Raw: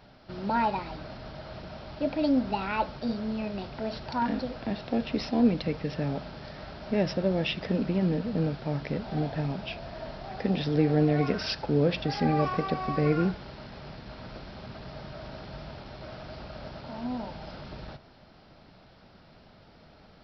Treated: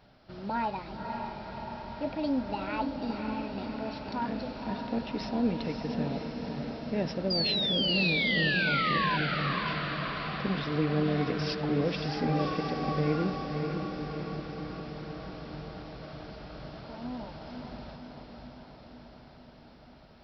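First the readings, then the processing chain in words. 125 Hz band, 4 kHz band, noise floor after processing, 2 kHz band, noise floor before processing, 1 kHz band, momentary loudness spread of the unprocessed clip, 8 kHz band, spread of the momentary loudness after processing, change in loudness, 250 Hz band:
-3.0 dB, +7.0 dB, -53 dBFS, +6.5 dB, -55 dBFS, -0.5 dB, 17 LU, n/a, 18 LU, -1.5 dB, -3.0 dB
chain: painted sound fall, 7.3–9.17, 970–4900 Hz -25 dBFS; diffused feedback echo 0.555 s, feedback 67%, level -5 dB; gain -5 dB

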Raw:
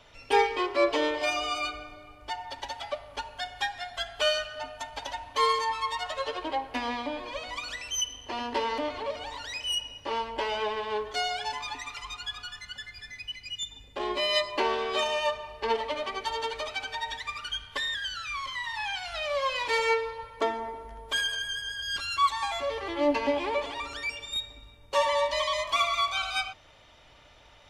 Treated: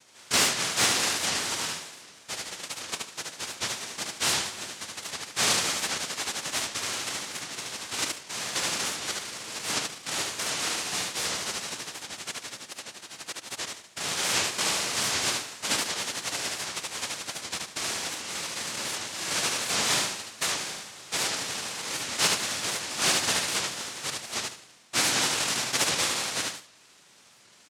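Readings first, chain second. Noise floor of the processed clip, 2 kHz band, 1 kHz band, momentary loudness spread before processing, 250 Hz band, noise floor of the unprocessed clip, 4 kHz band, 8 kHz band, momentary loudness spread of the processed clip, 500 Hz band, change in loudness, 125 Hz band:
-56 dBFS, +1.0 dB, -5.5 dB, 12 LU, -1.5 dB, -54 dBFS, +3.5 dB, +15.0 dB, 12 LU, -8.5 dB, +2.0 dB, +8.0 dB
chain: noise vocoder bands 1; hard clip -13.5 dBFS, distortion -28 dB; on a send: feedback echo 74 ms, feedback 24%, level -3 dB; on the sum: record warp 78 rpm, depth 160 cents; gain -1.5 dB

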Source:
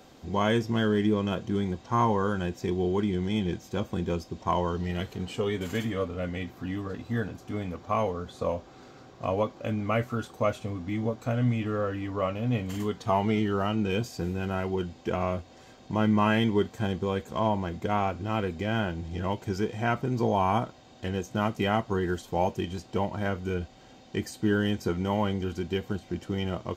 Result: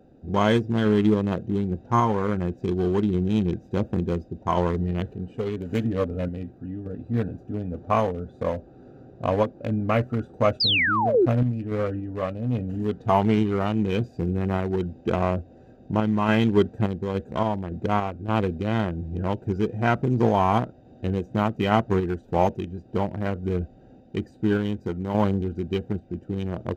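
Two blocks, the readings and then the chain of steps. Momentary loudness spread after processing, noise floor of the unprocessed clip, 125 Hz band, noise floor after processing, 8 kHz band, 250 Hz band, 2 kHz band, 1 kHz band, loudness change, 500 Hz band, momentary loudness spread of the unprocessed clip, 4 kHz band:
10 LU, -52 dBFS, +4.5 dB, -51 dBFS, n/a, +4.0 dB, +4.0 dB, +3.5 dB, +4.0 dB, +4.0 dB, 9 LU, +6.5 dB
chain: Wiener smoothing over 41 samples; painted sound fall, 10.6–11.26, 320–5200 Hz -24 dBFS; random-step tremolo; gain +7 dB

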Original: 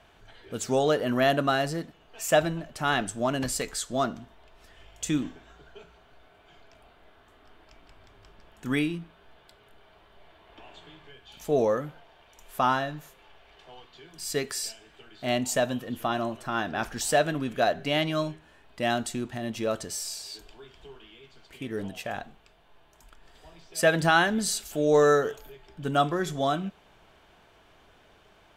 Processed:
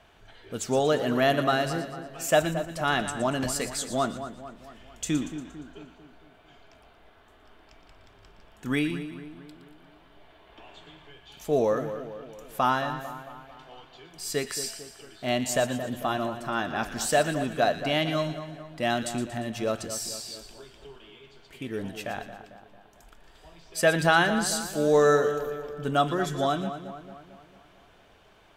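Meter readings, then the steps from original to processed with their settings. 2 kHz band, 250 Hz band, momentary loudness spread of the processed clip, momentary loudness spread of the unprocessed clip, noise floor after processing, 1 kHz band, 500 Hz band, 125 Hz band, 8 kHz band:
+0.5 dB, +0.5 dB, 18 LU, 14 LU, -57 dBFS, +0.5 dB, +0.5 dB, +0.5 dB, +0.5 dB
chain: split-band echo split 1600 Hz, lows 0.224 s, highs 0.117 s, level -10.5 dB

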